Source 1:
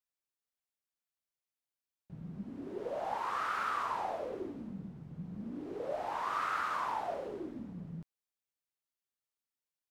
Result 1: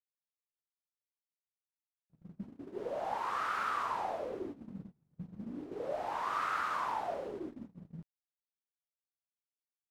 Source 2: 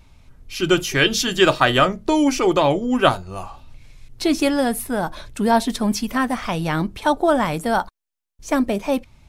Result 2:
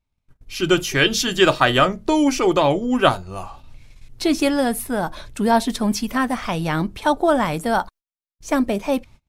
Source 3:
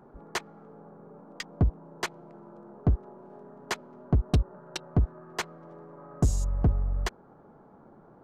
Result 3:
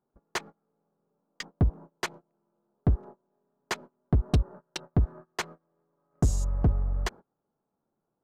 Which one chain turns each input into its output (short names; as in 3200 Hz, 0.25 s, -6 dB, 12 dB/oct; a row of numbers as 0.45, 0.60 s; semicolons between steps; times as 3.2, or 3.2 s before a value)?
gate -42 dBFS, range -28 dB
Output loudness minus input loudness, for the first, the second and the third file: +0.5, 0.0, 0.0 LU